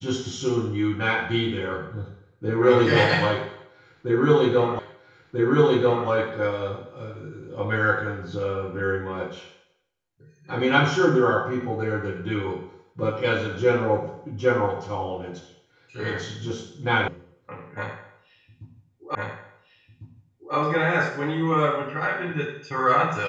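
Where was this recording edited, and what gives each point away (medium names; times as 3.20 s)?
4.79 s: repeat of the last 1.29 s
17.08 s: sound stops dead
19.15 s: repeat of the last 1.4 s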